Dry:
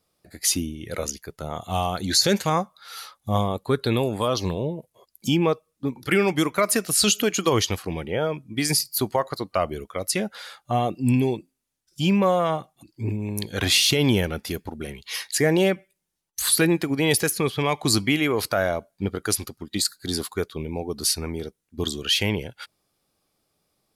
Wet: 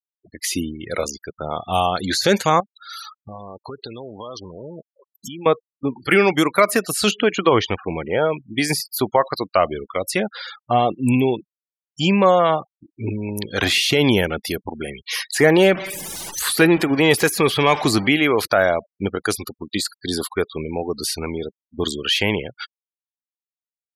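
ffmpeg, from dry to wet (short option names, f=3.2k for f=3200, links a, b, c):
-filter_complex "[0:a]asettb=1/sr,asplit=3[a][b][c];[a]atrim=end=2.604[d];[b]atrim=start=2.6:end=5.46,asetpts=PTS-STARTPTS,afade=t=in:d=0.004:c=qsin,afade=t=out:st=2.856:d=0.004:c=qsin,acompressor=threshold=-35dB:ratio=8:attack=3.2:release=140:knee=1:detection=peak[e];[c]atrim=start=5.456[f];[d][e]acrossfade=d=0.004:c1=hsin:c2=qsin[g];[g][f]acrossfade=d=0.004:c1=qsin:c2=hsin,asplit=3[h][i][j];[h]afade=t=out:st=7.1:d=0.02[k];[i]lowpass=2.7k,afade=t=in:st=7.1:d=0.02,afade=t=out:st=8.31:d=0.02[l];[j]afade=t=in:st=8.31:d=0.02[m];[k][l][m]amix=inputs=3:normalize=0,asettb=1/sr,asplit=3[n][o][p];[n]atrim=end=15.354[q];[o]atrim=start=15.35:end=18.08,asetpts=PTS-STARTPTS,afade=t=in:d=0.004:c=qsin,afade=t=out:st=2.726:d=0.004:c=qsin,aeval=exprs='val(0)+0.5*0.0355*sgn(val(0))':c=same[r];[p]atrim=start=18.076[s];[q][r]acrossfade=d=0.004:c1=hsin:c2=qsin[t];[t][s]acrossfade=d=0.004:c1=qsin:c2=hsin,afftfilt=real='re*gte(hypot(re,im),0.0126)':imag='im*gte(hypot(re,im),0.0126)':win_size=1024:overlap=0.75,acrossover=split=2600[u][v];[v]acompressor=threshold=-30dB:ratio=4:attack=1:release=60[w];[u][w]amix=inputs=2:normalize=0,lowshelf=f=210:g=-10,volume=7.5dB"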